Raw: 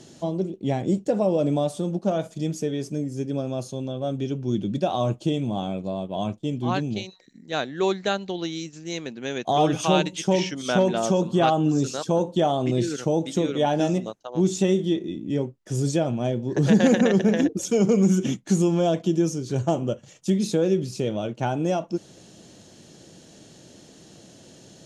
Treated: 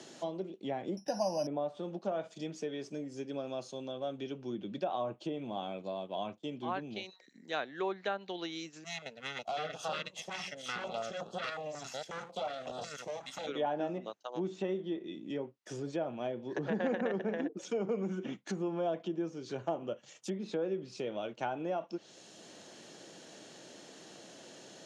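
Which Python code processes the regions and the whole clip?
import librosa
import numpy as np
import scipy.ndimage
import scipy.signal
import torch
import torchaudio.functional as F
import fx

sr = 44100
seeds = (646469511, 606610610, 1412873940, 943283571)

y = fx.chain(x, sr, fx.high_shelf(hz=3100.0, db=9.5),
    fx.comb(ms=1.2, depth=0.92),
    fx.resample_bad(factor=8, down='filtered', up='zero_stuff'), at=(0.97, 1.47))
y = fx.chain(y, sr, fx.lower_of_two(delay_ms=1.5),
    fx.tube_stage(drive_db=19.0, bias=0.55),
    fx.filter_held_notch(hz=5.5, low_hz=510.0, high_hz=2100.0), at=(8.84, 13.47))
y = fx.env_lowpass_down(y, sr, base_hz=1500.0, full_db=-19.0)
y = fx.weighting(y, sr, curve='A')
y = fx.band_squash(y, sr, depth_pct=40)
y = y * librosa.db_to_amplitude(-7.0)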